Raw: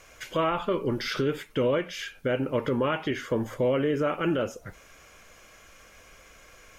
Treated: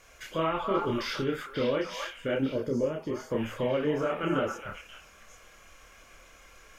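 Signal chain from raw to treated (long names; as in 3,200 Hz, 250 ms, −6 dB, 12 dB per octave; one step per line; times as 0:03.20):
echo through a band-pass that steps 268 ms, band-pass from 1,100 Hz, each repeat 1.4 octaves, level −1 dB
gain on a spectral selection 0:02.53–0:03.30, 680–4,200 Hz −13 dB
multi-voice chorus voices 6, 0.95 Hz, delay 28 ms, depth 3 ms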